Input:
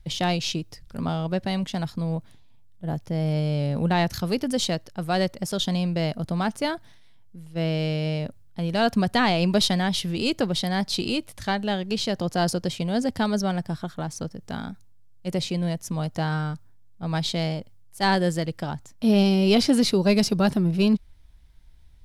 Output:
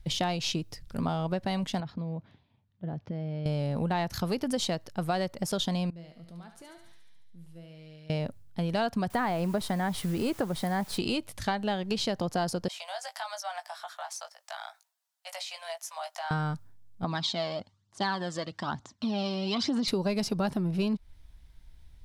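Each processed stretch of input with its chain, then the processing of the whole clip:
1.8–3.46 compressor 10:1, threshold -29 dBFS + HPF 82 Hz + air absorption 250 m
5.9–8.1 compressor 4:1, threshold -41 dBFS + resonator 170 Hz, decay 0.38 s, mix 70% + thinning echo 71 ms, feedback 70%, high-pass 940 Hz, level -6.5 dB
9.1–10.98 band shelf 4200 Hz -10 dB + requantised 8-bit, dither triangular
12.68–16.31 steep high-pass 630 Hz 72 dB/oct + compressor, threshold -35 dBFS + doubler 18 ms -7 dB
17.04–19.88 compressor 2.5:1, threshold -27 dBFS + phaser 1.1 Hz, delay 1.9 ms, feedback 52% + speaker cabinet 140–6900 Hz, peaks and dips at 150 Hz -9 dB, 480 Hz -7 dB, 1100 Hz +7 dB, 2400 Hz -4 dB, 3700 Hz +4 dB
whole clip: dynamic EQ 930 Hz, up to +5 dB, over -39 dBFS, Q 1.1; compressor, threshold -26 dBFS

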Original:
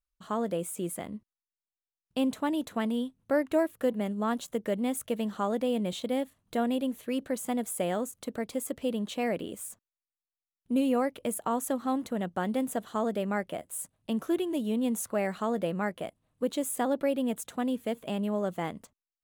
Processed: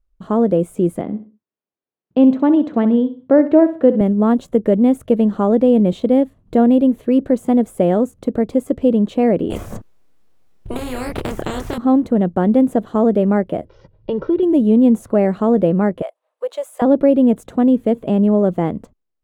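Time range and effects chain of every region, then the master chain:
1.01–4.01 BPF 180–3800 Hz + feedback echo 65 ms, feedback 32%, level -13 dB
9.5–11.78 doubler 28 ms -3 dB + spectral compressor 10:1
13.65–14.43 steep low-pass 5600 Hz 96 dB/oct + comb 2.1 ms, depth 85% + compressor 4:1, threshold -31 dBFS
16.02–16.82 steep high-pass 570 Hz + notch 730 Hz, Q 13
whole clip: bell 400 Hz +6.5 dB 1.9 oct; de-esser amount 55%; tilt -3.5 dB/oct; gain +6 dB

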